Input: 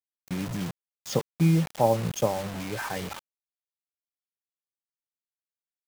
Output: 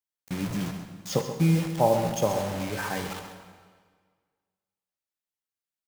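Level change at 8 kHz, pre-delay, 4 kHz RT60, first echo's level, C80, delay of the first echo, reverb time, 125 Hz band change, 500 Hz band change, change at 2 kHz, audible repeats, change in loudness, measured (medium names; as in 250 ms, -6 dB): +1.5 dB, 10 ms, 1.4 s, -10.5 dB, 6.5 dB, 133 ms, 1.7 s, -0.5 dB, +1.0 dB, +1.5 dB, 1, +0.5 dB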